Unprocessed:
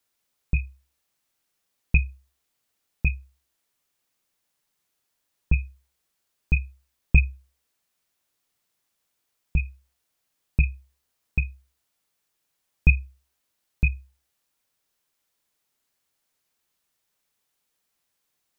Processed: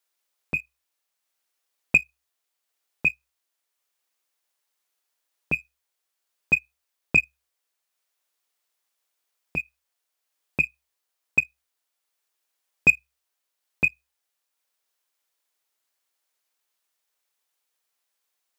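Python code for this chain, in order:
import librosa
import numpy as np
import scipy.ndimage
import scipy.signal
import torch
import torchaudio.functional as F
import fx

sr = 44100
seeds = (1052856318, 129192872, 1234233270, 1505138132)

y = fx.transient(x, sr, attack_db=8, sustain_db=-2)
y = scipy.signal.sosfilt(scipy.signal.butter(2, 450.0, 'highpass', fs=sr, output='sos'), y)
y = fx.leveller(y, sr, passes=1)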